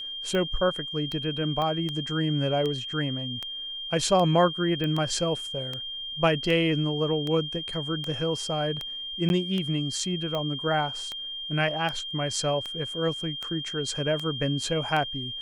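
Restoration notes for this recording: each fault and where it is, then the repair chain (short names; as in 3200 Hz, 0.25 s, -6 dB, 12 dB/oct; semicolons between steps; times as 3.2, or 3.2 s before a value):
tick 78 rpm -18 dBFS
tone 3200 Hz -33 dBFS
1.62 pop -19 dBFS
4.84 pop -19 dBFS
9.29–9.3 gap 11 ms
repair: de-click; notch 3200 Hz, Q 30; interpolate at 9.29, 11 ms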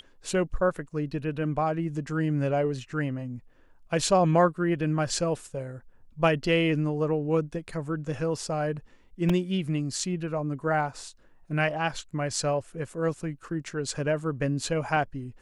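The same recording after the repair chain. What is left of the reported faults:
1.62 pop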